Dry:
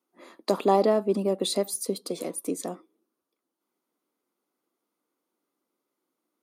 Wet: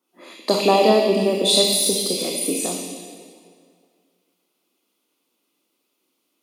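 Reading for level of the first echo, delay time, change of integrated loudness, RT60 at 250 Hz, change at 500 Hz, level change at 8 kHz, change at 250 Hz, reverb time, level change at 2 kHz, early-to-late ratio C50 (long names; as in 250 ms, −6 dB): no echo audible, no echo audible, +8.5 dB, 2.1 s, +6.5 dB, +13.0 dB, +6.0 dB, 2.2 s, +13.5 dB, −4.0 dB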